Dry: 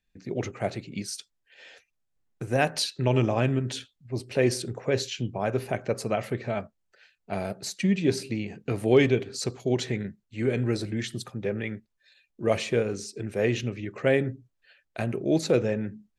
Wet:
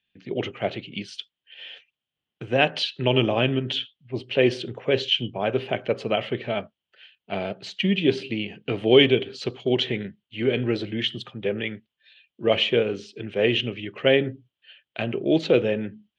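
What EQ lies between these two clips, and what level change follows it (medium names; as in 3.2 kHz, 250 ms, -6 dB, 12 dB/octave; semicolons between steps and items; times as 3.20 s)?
high-pass 99 Hz; dynamic bell 430 Hz, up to +5 dB, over -35 dBFS, Q 0.7; resonant low-pass 3.1 kHz, resonance Q 8.6; -1.0 dB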